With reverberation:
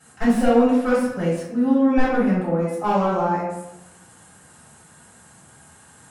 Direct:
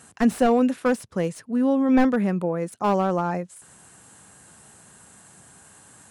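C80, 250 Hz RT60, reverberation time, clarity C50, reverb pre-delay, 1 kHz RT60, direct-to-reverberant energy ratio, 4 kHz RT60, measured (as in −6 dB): 4.5 dB, 1.2 s, 0.95 s, 0.5 dB, 3 ms, 0.95 s, −11.0 dB, 0.55 s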